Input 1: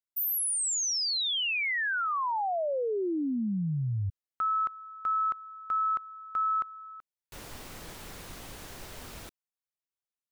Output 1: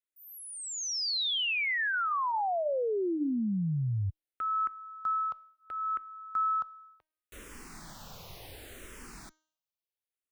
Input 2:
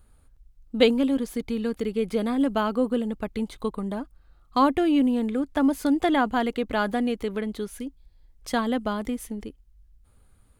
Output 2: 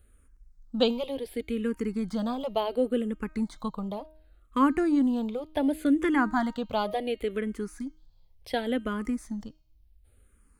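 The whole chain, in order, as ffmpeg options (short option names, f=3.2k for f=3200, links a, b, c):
-filter_complex "[0:a]acrossover=split=5900[a][b];[b]acompressor=threshold=-45dB:ratio=4:attack=1:release=60[c];[a][c]amix=inputs=2:normalize=0,bandreject=f=312.5:t=h:w=4,bandreject=f=625:t=h:w=4,bandreject=f=937.5:t=h:w=4,bandreject=f=1.25k:t=h:w=4,bandreject=f=1.5625k:t=h:w=4,bandreject=f=1.875k:t=h:w=4,bandreject=f=2.1875k:t=h:w=4,bandreject=f=2.5k:t=h:w=4,bandreject=f=2.8125k:t=h:w=4,bandreject=f=3.125k:t=h:w=4,bandreject=f=3.4375k:t=h:w=4,bandreject=f=3.75k:t=h:w=4,bandreject=f=4.0625k:t=h:w=4,bandreject=f=4.375k:t=h:w=4,bandreject=f=4.6875k:t=h:w=4,bandreject=f=5k:t=h:w=4,bandreject=f=5.3125k:t=h:w=4,bandreject=f=5.625k:t=h:w=4,bandreject=f=5.9375k:t=h:w=4,bandreject=f=6.25k:t=h:w=4,bandreject=f=6.5625k:t=h:w=4,bandreject=f=6.875k:t=h:w=4,bandreject=f=7.1875k:t=h:w=4,asplit=2[d][e];[e]afreqshift=-0.69[f];[d][f]amix=inputs=2:normalize=1"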